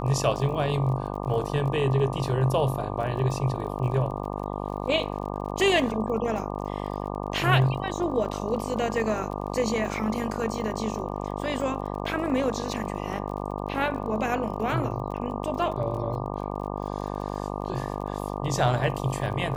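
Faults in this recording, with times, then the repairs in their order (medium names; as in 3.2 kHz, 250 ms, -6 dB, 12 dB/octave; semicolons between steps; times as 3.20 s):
buzz 50 Hz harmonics 24 -32 dBFS
crackle 30 per s -36 dBFS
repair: de-click; de-hum 50 Hz, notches 24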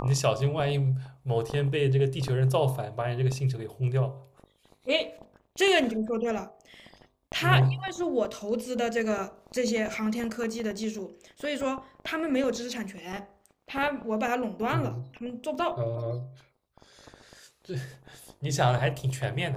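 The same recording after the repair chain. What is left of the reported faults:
nothing left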